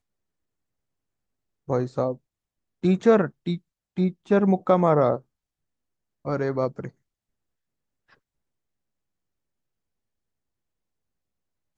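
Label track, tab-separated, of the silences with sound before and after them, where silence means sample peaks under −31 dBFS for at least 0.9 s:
5.170000	6.250000	silence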